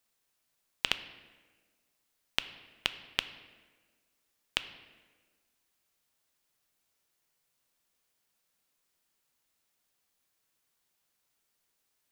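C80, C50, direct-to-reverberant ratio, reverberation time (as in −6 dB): 14.5 dB, 13.0 dB, 11.0 dB, 1.4 s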